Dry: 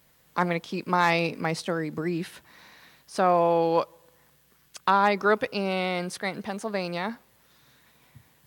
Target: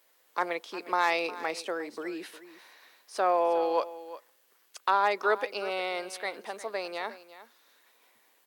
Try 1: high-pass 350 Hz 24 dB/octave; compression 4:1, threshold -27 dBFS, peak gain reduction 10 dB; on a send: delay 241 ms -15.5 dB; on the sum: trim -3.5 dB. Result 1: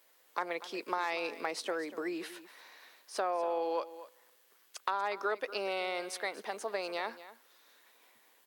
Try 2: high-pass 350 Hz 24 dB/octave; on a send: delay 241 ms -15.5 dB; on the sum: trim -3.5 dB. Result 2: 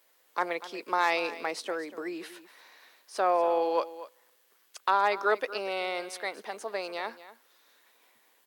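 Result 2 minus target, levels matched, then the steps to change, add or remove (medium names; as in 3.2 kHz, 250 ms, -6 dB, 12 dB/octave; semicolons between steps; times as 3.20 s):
echo 116 ms early
change: delay 357 ms -15.5 dB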